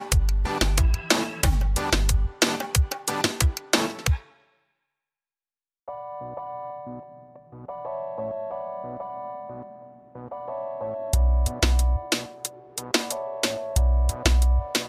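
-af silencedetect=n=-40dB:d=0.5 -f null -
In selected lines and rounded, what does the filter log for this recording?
silence_start: 4.22
silence_end: 5.88 | silence_duration: 1.66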